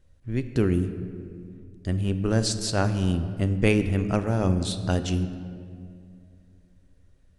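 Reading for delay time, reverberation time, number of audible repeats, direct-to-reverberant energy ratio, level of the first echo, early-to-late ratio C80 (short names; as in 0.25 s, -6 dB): none, 2.3 s, none, 9.0 dB, none, 11.5 dB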